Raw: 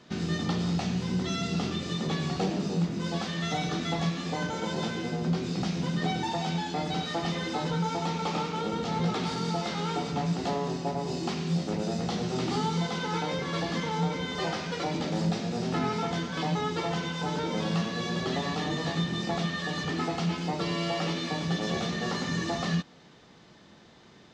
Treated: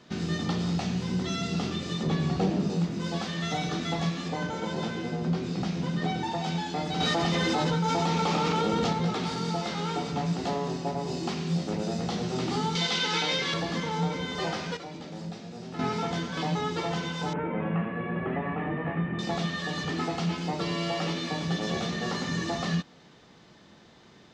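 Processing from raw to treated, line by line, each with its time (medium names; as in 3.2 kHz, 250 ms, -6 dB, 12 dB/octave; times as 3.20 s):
2.03–2.70 s: tilt EQ -1.5 dB/octave
4.28–6.44 s: treble shelf 3.8 kHz -5.5 dB
7.00–8.93 s: level flattener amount 100%
12.75–13.54 s: frequency weighting D
14.77–15.79 s: gain -10 dB
17.33–19.19 s: steep low-pass 2.5 kHz 48 dB/octave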